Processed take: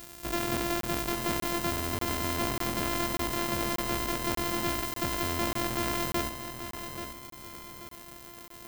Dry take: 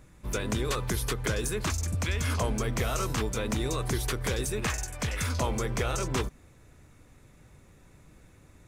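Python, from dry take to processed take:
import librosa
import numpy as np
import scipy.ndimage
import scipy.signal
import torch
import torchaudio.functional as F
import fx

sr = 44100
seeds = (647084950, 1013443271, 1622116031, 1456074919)

p1 = np.r_[np.sort(x[:len(x) // 128 * 128].reshape(-1, 128), axis=1).ravel(), x[len(x) // 128 * 128:]]
p2 = fx.low_shelf(p1, sr, hz=250.0, db=6.5)
p3 = fx.rider(p2, sr, range_db=10, speed_s=0.5)
p4 = p2 + F.gain(torch.from_numpy(p3), -2.5).numpy()
p5 = 10.0 ** (-17.5 / 20.0) * np.tanh(p4 / 10.0 ** (-17.5 / 20.0))
p6 = fx.riaa(p5, sr, side='recording')
p7 = np.clip(p6, -10.0 ** (-17.5 / 20.0), 10.0 ** (-17.5 / 20.0))
p8 = p7 + fx.echo_feedback(p7, sr, ms=834, feedback_pct=41, wet_db=-9.0, dry=0)
y = fx.buffer_crackle(p8, sr, first_s=0.81, period_s=0.59, block=1024, kind='zero')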